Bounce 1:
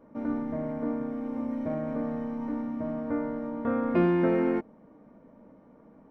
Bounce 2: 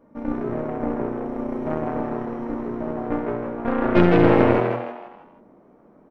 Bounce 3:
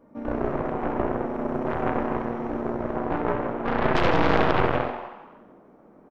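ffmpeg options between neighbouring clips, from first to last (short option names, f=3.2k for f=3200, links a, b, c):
-filter_complex "[0:a]aeval=exprs='0.211*(cos(1*acos(clip(val(0)/0.211,-1,1)))-cos(1*PI/2))+0.075*(cos(4*acos(clip(val(0)/0.211,-1,1)))-cos(4*PI/2))+0.0211*(cos(6*acos(clip(val(0)/0.211,-1,1)))-cos(6*PI/2))+0.015*(cos(7*acos(clip(val(0)/0.211,-1,1)))-cos(7*PI/2))':c=same,asplit=2[a][b];[b]asplit=5[c][d][e][f][g];[c]adelay=160,afreqshift=120,volume=-3.5dB[h];[d]adelay=320,afreqshift=240,volume=-11.7dB[i];[e]adelay=480,afreqshift=360,volume=-19.9dB[j];[f]adelay=640,afreqshift=480,volume=-28dB[k];[g]adelay=800,afreqshift=600,volume=-36.2dB[l];[h][i][j][k][l]amix=inputs=5:normalize=0[m];[a][m]amix=inputs=2:normalize=0,volume=6dB"
-filter_complex "[0:a]asplit=6[a][b][c][d][e][f];[b]adelay=92,afreqshift=140,volume=-10dB[g];[c]adelay=184,afreqshift=280,volume=-16dB[h];[d]adelay=276,afreqshift=420,volume=-22dB[i];[e]adelay=368,afreqshift=560,volume=-28.1dB[j];[f]adelay=460,afreqshift=700,volume=-34.1dB[k];[a][g][h][i][j][k]amix=inputs=6:normalize=0,aeval=exprs='1*(cos(1*acos(clip(val(0)/1,-1,1)))-cos(1*PI/2))+0.316*(cos(6*acos(clip(val(0)/1,-1,1)))-cos(6*PI/2))+0.0447*(cos(7*acos(clip(val(0)/1,-1,1)))-cos(7*PI/2))':c=same,alimiter=limit=-11dB:level=0:latency=1:release=52,volume=3dB"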